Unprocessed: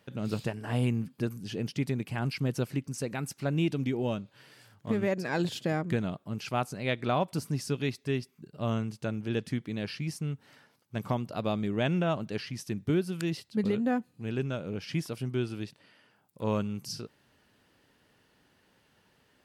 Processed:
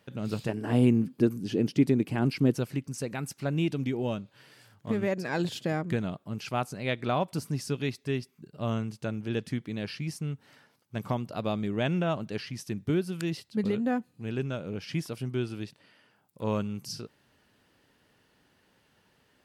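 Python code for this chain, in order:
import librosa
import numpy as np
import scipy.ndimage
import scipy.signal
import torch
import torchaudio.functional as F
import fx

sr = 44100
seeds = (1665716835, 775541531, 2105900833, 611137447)

y = fx.peak_eq(x, sr, hz=310.0, db=11.0, octaves=1.4, at=(0.49, 2.56))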